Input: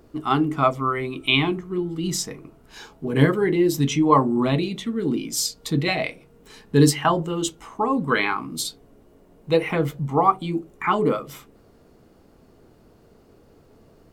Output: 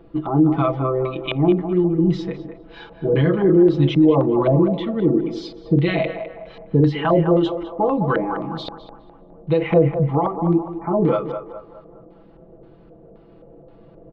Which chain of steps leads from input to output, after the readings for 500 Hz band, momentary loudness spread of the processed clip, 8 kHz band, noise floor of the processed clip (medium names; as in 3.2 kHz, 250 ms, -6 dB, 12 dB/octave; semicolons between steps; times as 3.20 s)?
+5.5 dB, 15 LU, under -25 dB, -48 dBFS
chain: comb 6 ms, depth 87%; peak limiter -11.5 dBFS, peak gain reduction 11 dB; LFO low-pass square 1.9 Hz 590–3600 Hz; tape spacing loss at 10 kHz 39 dB; on a send: band-passed feedback delay 206 ms, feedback 48%, band-pass 860 Hz, level -7 dB; on the sum: trim +4 dB